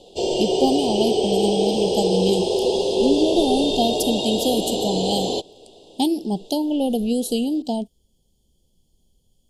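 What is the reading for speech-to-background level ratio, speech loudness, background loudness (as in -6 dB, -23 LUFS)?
-2.0 dB, -23.5 LUFS, -21.5 LUFS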